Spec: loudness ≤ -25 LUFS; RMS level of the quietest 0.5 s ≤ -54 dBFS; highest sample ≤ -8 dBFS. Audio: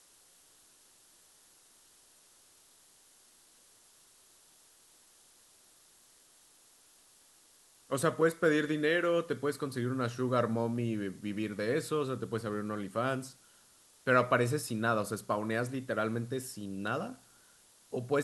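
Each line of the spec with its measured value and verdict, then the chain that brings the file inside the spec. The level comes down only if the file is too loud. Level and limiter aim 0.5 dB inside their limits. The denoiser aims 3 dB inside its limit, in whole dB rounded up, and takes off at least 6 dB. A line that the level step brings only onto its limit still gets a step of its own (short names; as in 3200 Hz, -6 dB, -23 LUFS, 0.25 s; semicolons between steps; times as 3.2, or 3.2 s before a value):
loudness -32.5 LUFS: OK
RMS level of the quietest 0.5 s -63 dBFS: OK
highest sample -11.5 dBFS: OK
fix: none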